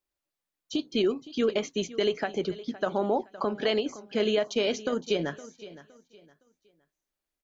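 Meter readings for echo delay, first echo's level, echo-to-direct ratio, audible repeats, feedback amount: 0.514 s, -17.0 dB, -16.5 dB, 2, 29%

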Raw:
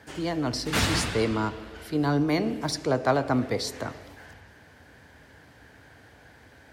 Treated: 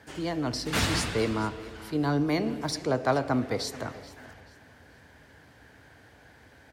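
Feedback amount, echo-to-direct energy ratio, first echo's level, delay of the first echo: 32%, -18.5 dB, -19.0 dB, 0.433 s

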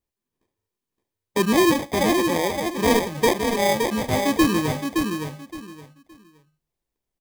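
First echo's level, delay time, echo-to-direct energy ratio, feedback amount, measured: -5.0 dB, 0.568 s, -5.0 dB, 22%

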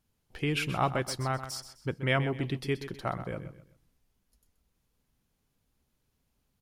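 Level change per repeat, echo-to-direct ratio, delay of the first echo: -10.0 dB, -11.5 dB, 0.128 s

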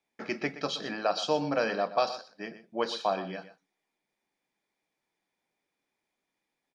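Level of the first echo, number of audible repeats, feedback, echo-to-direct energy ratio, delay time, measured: -13.5 dB, 1, no steady repeat, -13.5 dB, 0.122 s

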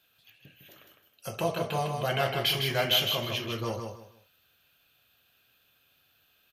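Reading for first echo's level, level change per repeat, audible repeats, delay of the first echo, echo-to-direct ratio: -5.5 dB, -11.5 dB, 3, 0.156 s, -5.0 dB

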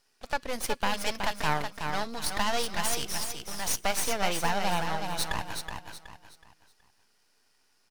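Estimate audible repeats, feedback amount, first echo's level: 4, 33%, -6.0 dB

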